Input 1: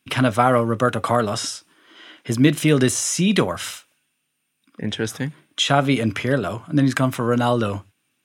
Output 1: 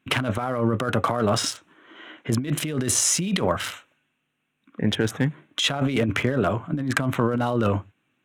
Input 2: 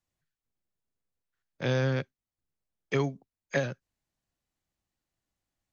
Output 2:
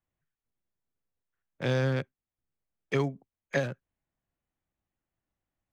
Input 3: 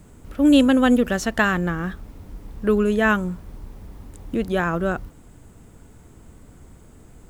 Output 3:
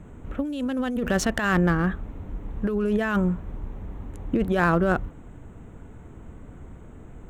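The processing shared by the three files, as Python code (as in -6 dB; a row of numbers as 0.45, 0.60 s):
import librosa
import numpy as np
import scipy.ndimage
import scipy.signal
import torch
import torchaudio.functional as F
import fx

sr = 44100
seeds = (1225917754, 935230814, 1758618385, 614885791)

y = fx.wiener(x, sr, points=9)
y = fx.over_compress(y, sr, threshold_db=-23.0, ratio=-1.0)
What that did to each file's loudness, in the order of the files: -3.5, 0.0, -4.5 LU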